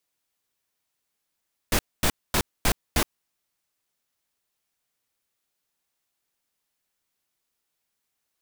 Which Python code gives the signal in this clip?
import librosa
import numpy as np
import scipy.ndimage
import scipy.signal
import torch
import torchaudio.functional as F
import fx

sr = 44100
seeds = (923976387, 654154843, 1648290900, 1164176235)

y = fx.noise_burst(sr, seeds[0], colour='pink', on_s=0.07, off_s=0.24, bursts=5, level_db=-21.0)